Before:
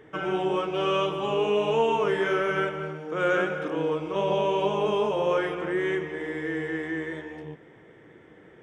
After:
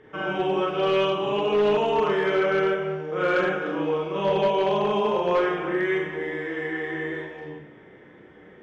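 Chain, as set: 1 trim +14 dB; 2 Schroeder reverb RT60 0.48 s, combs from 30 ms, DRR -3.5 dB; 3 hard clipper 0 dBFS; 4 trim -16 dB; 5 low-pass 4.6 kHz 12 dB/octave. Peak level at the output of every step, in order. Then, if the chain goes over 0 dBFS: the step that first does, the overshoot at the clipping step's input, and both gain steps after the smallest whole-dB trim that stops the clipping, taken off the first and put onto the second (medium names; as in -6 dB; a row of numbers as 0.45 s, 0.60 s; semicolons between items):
+2.0 dBFS, +6.5 dBFS, 0.0 dBFS, -16.0 dBFS, -15.5 dBFS; step 1, 6.5 dB; step 1 +7 dB, step 4 -9 dB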